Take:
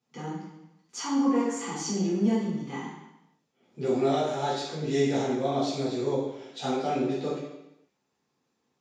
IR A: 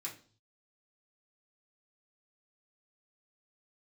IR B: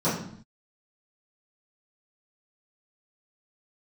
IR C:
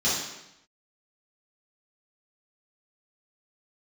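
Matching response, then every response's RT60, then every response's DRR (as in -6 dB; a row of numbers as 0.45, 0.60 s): C; 0.45, 0.60, 0.85 s; -5.0, -14.5, -11.0 dB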